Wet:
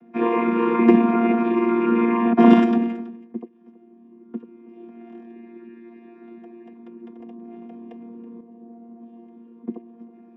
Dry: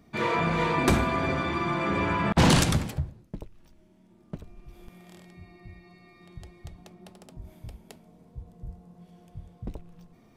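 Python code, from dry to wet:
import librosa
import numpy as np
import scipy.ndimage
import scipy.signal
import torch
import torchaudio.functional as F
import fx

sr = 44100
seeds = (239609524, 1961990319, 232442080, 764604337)

y = fx.chord_vocoder(x, sr, chord='bare fifth', root=58)
y = scipy.signal.savgol_filter(y, 25, 4, mode='constant')
y = fx.low_shelf(y, sr, hz=450.0, db=5.5)
y = y + 10.0 ** (-20.0 / 20.0) * np.pad(y, (int(326 * sr / 1000.0), 0))[:len(y)]
y = fx.env_flatten(y, sr, amount_pct=100, at=(7.2, 8.41))
y = y * 10.0 ** (4.5 / 20.0)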